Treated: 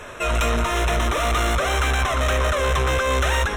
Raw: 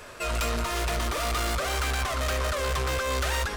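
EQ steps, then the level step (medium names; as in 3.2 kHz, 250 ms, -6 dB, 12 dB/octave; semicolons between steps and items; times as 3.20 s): Butterworth band-stop 4.6 kHz, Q 3.9; treble shelf 9.3 kHz -11.5 dB; band-stop 4.8 kHz, Q 6.9; +7.5 dB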